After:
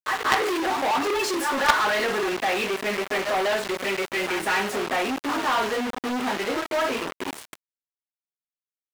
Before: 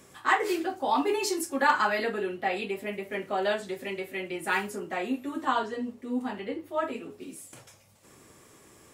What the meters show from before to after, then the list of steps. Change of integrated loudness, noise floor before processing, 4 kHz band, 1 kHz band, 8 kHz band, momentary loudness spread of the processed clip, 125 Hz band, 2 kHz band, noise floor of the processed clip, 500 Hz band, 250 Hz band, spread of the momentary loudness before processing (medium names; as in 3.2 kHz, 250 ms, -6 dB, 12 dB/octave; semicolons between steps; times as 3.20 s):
+5.0 dB, -56 dBFS, +9.5 dB, +4.5 dB, +6.0 dB, 6 LU, +4.0 dB, +6.0 dB, under -85 dBFS, +5.0 dB, +3.0 dB, 10 LU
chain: pre-echo 201 ms -14.5 dB; companded quantiser 2-bit; overdrive pedal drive 12 dB, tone 2.4 kHz, clips at 0 dBFS; trim -1 dB